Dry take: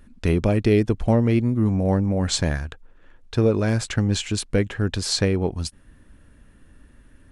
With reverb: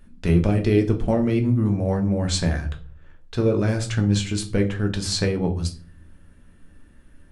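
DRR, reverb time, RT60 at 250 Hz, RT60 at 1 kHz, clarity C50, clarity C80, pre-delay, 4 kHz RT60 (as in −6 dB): 3.5 dB, 0.40 s, 0.65 s, 0.35 s, 13.5 dB, 18.5 dB, 5 ms, 0.30 s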